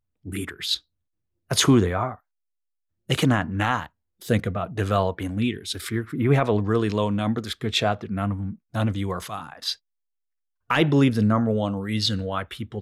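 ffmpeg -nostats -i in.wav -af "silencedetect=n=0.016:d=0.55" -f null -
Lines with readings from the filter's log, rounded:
silence_start: 0.77
silence_end: 1.51 | silence_duration: 0.74
silence_start: 2.15
silence_end: 3.10 | silence_duration: 0.95
silence_start: 9.74
silence_end: 10.70 | silence_duration: 0.97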